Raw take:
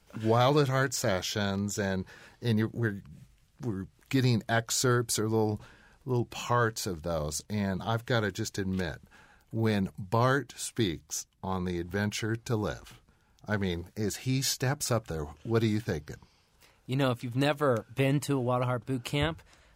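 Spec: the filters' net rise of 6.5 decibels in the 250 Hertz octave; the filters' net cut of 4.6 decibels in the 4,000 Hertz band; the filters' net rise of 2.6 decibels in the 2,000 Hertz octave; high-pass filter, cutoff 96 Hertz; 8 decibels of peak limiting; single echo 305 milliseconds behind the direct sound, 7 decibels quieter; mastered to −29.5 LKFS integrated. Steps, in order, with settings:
high-pass filter 96 Hz
parametric band 250 Hz +8.5 dB
parametric band 2,000 Hz +5 dB
parametric band 4,000 Hz −7.5 dB
brickwall limiter −16.5 dBFS
single-tap delay 305 ms −7 dB
level −0.5 dB

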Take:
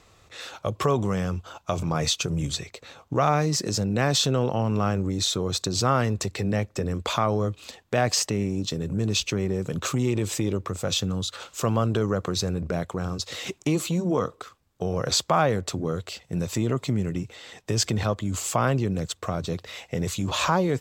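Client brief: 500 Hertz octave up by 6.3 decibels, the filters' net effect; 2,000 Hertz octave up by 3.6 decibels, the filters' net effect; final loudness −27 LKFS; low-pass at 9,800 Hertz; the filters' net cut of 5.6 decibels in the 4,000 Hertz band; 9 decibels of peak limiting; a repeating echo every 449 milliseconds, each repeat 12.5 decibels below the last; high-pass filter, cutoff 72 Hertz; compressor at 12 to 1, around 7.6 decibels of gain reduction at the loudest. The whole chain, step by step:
high-pass filter 72 Hz
low-pass filter 9,800 Hz
parametric band 500 Hz +7.5 dB
parametric band 2,000 Hz +6.5 dB
parametric band 4,000 Hz −8.5 dB
downward compressor 12 to 1, threshold −20 dBFS
brickwall limiter −17 dBFS
repeating echo 449 ms, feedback 24%, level −12.5 dB
level +1.5 dB

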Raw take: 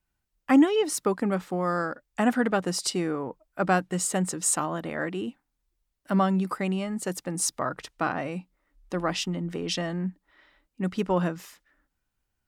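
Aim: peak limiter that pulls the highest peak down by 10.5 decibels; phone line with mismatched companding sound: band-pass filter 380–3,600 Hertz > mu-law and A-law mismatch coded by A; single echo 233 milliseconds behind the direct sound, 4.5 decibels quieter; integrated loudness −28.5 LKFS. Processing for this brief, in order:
brickwall limiter −20.5 dBFS
band-pass filter 380–3,600 Hz
single-tap delay 233 ms −4.5 dB
mu-law and A-law mismatch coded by A
level +7 dB

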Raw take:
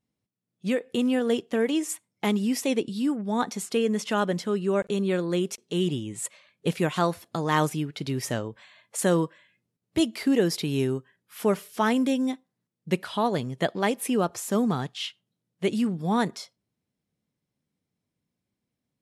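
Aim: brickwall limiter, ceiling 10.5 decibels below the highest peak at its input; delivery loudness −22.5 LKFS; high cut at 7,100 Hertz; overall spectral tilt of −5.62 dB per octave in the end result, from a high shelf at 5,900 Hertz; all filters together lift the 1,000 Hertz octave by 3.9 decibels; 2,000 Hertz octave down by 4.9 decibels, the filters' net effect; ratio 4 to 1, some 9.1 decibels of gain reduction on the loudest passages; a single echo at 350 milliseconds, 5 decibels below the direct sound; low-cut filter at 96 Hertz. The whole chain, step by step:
high-pass filter 96 Hz
low-pass filter 7,100 Hz
parametric band 1,000 Hz +7 dB
parametric band 2,000 Hz −9 dB
high-shelf EQ 5,900 Hz −4.5 dB
downward compressor 4 to 1, threshold −28 dBFS
brickwall limiter −24.5 dBFS
single-tap delay 350 ms −5 dB
level +11.5 dB

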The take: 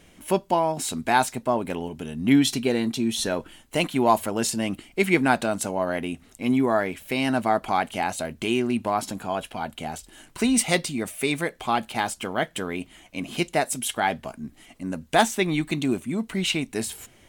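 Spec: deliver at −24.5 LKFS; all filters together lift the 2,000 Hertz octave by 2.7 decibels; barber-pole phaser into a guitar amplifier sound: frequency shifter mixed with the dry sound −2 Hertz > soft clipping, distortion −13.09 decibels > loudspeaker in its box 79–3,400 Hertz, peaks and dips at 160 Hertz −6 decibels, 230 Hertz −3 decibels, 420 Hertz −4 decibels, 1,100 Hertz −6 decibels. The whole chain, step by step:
parametric band 2,000 Hz +4 dB
frequency shifter mixed with the dry sound −2 Hz
soft clipping −18.5 dBFS
loudspeaker in its box 79–3,400 Hz, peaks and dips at 160 Hz −6 dB, 230 Hz −3 dB, 420 Hz −4 dB, 1,100 Hz −6 dB
level +7 dB

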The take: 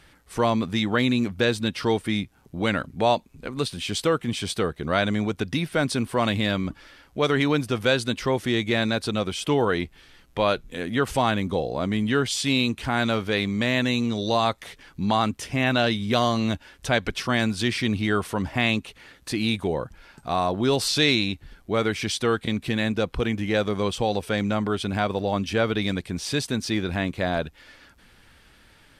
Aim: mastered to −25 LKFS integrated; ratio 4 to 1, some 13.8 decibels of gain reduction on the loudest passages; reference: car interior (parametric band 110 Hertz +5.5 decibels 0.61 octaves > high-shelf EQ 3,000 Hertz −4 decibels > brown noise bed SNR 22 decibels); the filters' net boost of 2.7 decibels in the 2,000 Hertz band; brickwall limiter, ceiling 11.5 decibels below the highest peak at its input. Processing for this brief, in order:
parametric band 2,000 Hz +5 dB
downward compressor 4 to 1, threshold −33 dBFS
brickwall limiter −30 dBFS
parametric band 110 Hz +5.5 dB 0.61 octaves
high-shelf EQ 3,000 Hz −4 dB
brown noise bed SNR 22 dB
level +15 dB

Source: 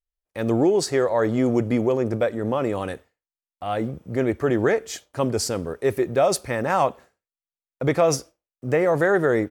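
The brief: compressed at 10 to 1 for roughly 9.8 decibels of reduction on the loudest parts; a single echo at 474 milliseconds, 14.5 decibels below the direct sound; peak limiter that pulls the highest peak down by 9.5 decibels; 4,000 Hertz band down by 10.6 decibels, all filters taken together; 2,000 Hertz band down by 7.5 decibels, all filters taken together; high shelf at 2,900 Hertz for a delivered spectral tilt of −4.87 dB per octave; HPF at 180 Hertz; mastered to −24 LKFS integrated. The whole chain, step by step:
high-pass filter 180 Hz
parametric band 2,000 Hz −6 dB
high-shelf EQ 2,900 Hz −8 dB
parametric band 4,000 Hz −5.5 dB
downward compressor 10 to 1, threshold −26 dBFS
brickwall limiter −24 dBFS
single-tap delay 474 ms −14.5 dB
level +10.5 dB

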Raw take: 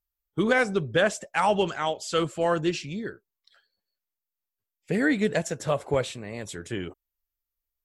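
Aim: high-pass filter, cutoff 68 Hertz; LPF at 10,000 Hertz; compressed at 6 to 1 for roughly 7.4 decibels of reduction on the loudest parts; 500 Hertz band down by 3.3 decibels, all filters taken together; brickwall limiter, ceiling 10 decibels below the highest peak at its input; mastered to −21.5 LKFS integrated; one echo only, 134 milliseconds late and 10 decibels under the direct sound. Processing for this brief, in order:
high-pass filter 68 Hz
low-pass filter 10,000 Hz
parametric band 500 Hz −4 dB
downward compressor 6 to 1, threshold −27 dBFS
brickwall limiter −25 dBFS
single-tap delay 134 ms −10 dB
level +14.5 dB

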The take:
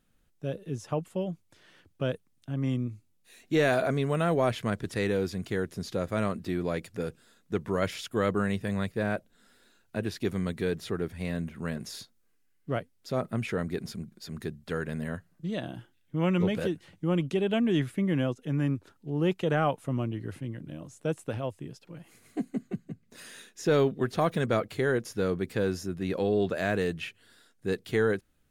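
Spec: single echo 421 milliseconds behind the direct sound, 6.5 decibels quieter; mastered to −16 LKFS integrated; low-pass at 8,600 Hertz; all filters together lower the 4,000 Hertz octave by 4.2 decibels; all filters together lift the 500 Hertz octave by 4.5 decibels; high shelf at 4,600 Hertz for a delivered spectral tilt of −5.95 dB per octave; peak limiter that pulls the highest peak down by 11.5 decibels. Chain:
low-pass filter 8,600 Hz
parametric band 500 Hz +5.5 dB
parametric band 4,000 Hz −7.5 dB
high-shelf EQ 4,600 Hz +4 dB
brickwall limiter −21.5 dBFS
single-tap delay 421 ms −6.5 dB
level +16.5 dB

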